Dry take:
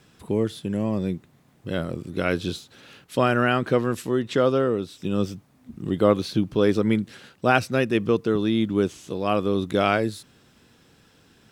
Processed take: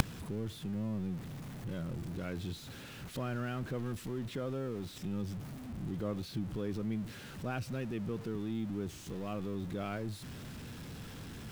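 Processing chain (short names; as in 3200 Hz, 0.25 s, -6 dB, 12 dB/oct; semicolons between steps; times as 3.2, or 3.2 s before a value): zero-crossing step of -25 dBFS; tone controls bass +10 dB, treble -3 dB; in parallel at +1 dB: limiter -12.5 dBFS, peak gain reduction 9.5 dB; on the sum: crackle 280/s -30 dBFS; flipped gate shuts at -17 dBFS, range -29 dB; gain +3 dB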